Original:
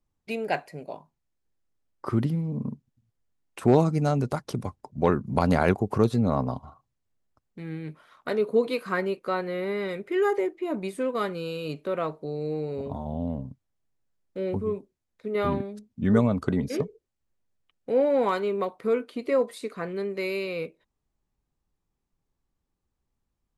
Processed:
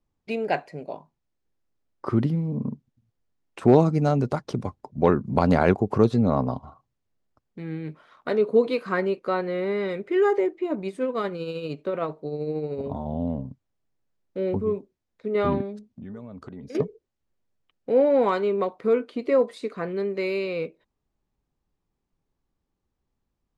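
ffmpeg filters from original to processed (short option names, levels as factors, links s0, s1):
-filter_complex "[0:a]asettb=1/sr,asplit=3[s0][s1][s2];[s0]atrim=end=10.654[s3];[s1]atrim=start=10.65:end=12.84,asetpts=PTS-STARTPTS,afade=t=in:d=0.004:c=qsin,afade=t=out:st=2.186:d=0.004:c=qsin,tremolo=f=13:d=0.41[s4];[s2]atrim=start=12.836[s5];[s3][s4]acrossfade=d=0.004:c1=hsin:c2=qsin[s6];[s6][s5]acrossfade=d=0.004:c1=qsin:c2=hsin,asettb=1/sr,asplit=3[s7][s8][s9];[s7]atrim=end=15.764[s10];[s8]atrim=start=15.76:end=16.75,asetpts=PTS-STARTPTS,afade=t=in:d=0.004:c=qsin,afade=t=out:st=0.986:d=0.004:c=qsin,acompressor=threshold=0.01:ratio=6:attack=3.2:release=140:knee=1:detection=peak[s11];[s9]atrim=start=16.746[s12];[s10][s11]acrossfade=d=0.004:c1=hsin:c2=qsin[s13];[s13][s12]acrossfade=d=0.004:c1=qsin:c2=hsin,lowpass=6500,equalizer=f=370:w=0.43:g=3.5"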